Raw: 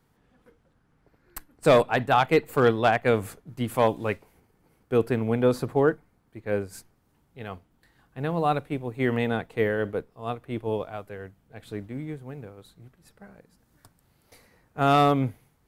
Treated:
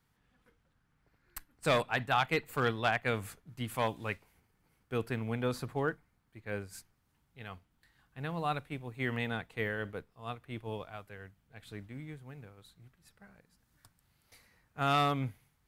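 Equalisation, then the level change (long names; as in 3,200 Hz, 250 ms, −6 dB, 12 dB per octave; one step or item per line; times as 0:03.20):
guitar amp tone stack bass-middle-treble 5-5-5
high-shelf EQ 3,600 Hz −7.5 dB
+7.5 dB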